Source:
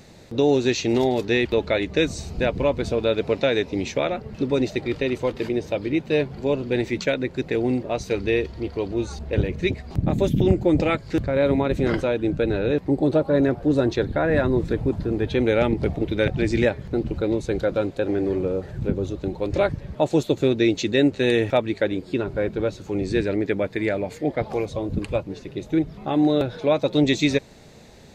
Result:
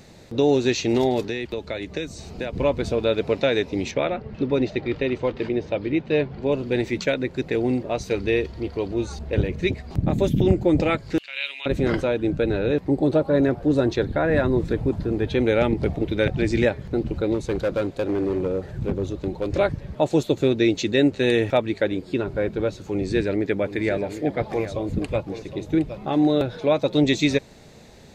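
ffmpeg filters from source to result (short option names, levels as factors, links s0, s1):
-filter_complex "[0:a]asettb=1/sr,asplit=3[s0][s1][s2];[s0]atrim=end=1.244[s3];[s1]atrim=start=1.24:end=2.53,asetpts=PTS-STARTPTS,afade=t=in:d=0.004:c=qsin,afade=t=out:st=1.286:d=0.004:c=qsin,acrossover=split=180|4800[s4][s5][s6];[s4]acompressor=threshold=0.01:ratio=4[s7];[s5]acompressor=threshold=0.0398:ratio=4[s8];[s6]acompressor=threshold=0.00501:ratio=4[s9];[s7][s8][s9]amix=inputs=3:normalize=0[s10];[s2]atrim=start=2.526[s11];[s3][s10]acrossfade=d=0.004:c1=hsin:c2=qsin[s12];[s12][s11]acrossfade=d=0.004:c1=qsin:c2=hsin,asettb=1/sr,asplit=3[s13][s14][s15];[s13]atrim=end=3.914[s16];[s14]atrim=start=3.91:end=6.52,asetpts=PTS-STARTPTS,afade=t=in:d=0.004:c=qsin,afade=t=out:st=2.606:d=0.004:c=qsin,lowpass=3900[s17];[s15]atrim=start=6.516[s18];[s16][s17]acrossfade=d=0.004:c1=hsin:c2=qsin[s19];[s19][s18]acrossfade=d=0.004:c1=qsin:c2=hsin,asettb=1/sr,asplit=3[s20][s21][s22];[s20]atrim=end=11.184[s23];[s21]atrim=start=11.18:end=11.66,asetpts=PTS-STARTPTS,afade=t=in:d=0.004:c=qsin,afade=t=out:st=0.476:d=0.004:c=qsin,highpass=f=2800:t=q:w=12[s24];[s22]atrim=start=11.656[s25];[s23][s24]acrossfade=d=0.004:c1=hsin:c2=qsin[s26];[s26][s25]acrossfade=d=0.004:c1=qsin:c2=hsin,asettb=1/sr,asplit=3[s27][s28][s29];[s27]atrim=end=17.344[s30];[s28]atrim=start=17.34:end=19.58,asetpts=PTS-STARTPTS,afade=t=in:d=0.004:c=qsin,afade=t=out:st=2.236:d=0.004:c=qsin,asoftclip=type=hard:threshold=0.126[s31];[s29]atrim=start=19.576[s32];[s30][s31]acrossfade=d=0.004:c1=hsin:c2=qsin[s33];[s33][s32]acrossfade=d=0.004:c1=qsin:c2=hsin,asettb=1/sr,asplit=3[s34][s35][s36];[s34]atrim=end=22.894[s37];[s35]atrim=start=22.89:end=26.28,asetpts=PTS-STARTPTS,afade=t=in:d=0.004:c=qsin,afade=t=out:st=3.386:d=0.004:c=qsin,aecho=1:1:765:0.266,atrim=end_sample=149499[s38];[s36]atrim=start=26.276[s39];[s37][s38]acrossfade=d=0.004:c1=hsin:c2=qsin[s40];[s40][s39]acrossfade=d=0.004:c1=qsin:c2=hsin"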